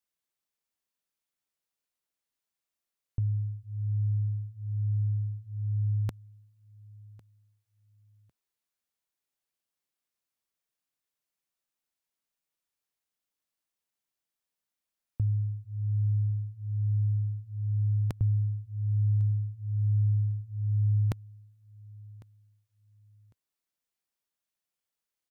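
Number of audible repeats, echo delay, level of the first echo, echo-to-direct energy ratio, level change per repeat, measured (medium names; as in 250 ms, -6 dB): 2, 1102 ms, -22.5 dB, -22.5 dB, -12.5 dB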